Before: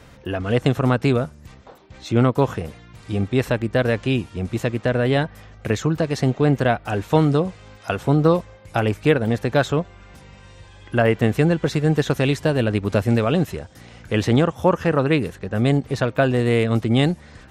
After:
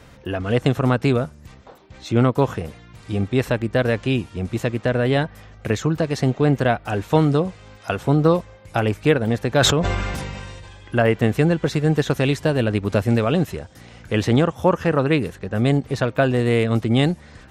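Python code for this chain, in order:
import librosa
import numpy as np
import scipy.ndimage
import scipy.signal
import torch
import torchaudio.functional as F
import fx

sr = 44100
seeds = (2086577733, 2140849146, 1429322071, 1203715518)

y = fx.sustainer(x, sr, db_per_s=25.0, at=(9.5, 10.98))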